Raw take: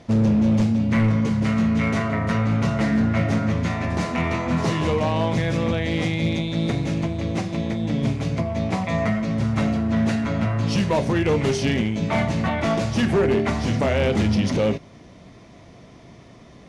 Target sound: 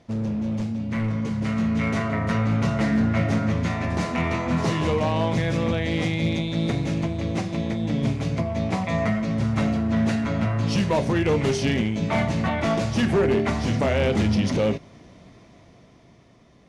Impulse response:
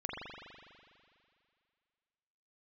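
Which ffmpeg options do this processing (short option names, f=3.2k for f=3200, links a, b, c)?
-af "dynaudnorm=f=270:g=11:m=7.5dB,volume=-8.5dB"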